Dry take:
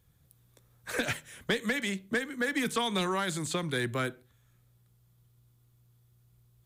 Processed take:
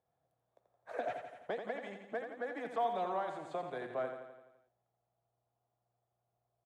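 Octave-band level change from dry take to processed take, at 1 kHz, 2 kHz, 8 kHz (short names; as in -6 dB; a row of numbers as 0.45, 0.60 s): -1.5 dB, -14.5 dB, under -25 dB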